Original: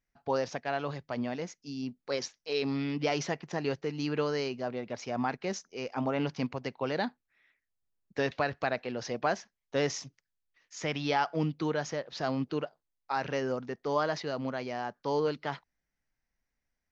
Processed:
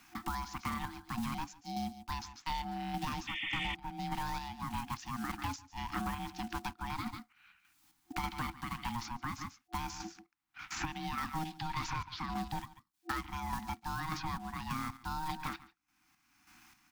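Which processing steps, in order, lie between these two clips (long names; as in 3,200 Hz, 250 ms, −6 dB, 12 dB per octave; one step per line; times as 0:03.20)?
one scale factor per block 5 bits
0:11.45–0:12.34: octave-band graphic EQ 500/2,000/4,000 Hz +8/+10/+11 dB
ring modulation 470 Hz
single-tap delay 141 ms −17 dB
0:03.27–0:03.75: sound drawn into the spectrogram noise 1,800–3,600 Hz −31 dBFS
brickwall limiter −21.5 dBFS, peak gain reduction 9.5 dB
square-wave tremolo 1.7 Hz, depth 60%, duty 45%
brick-wall band-stop 340–730 Hz
soft clipping −27 dBFS, distortion −17 dB
multiband upward and downward compressor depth 100%
level +1.5 dB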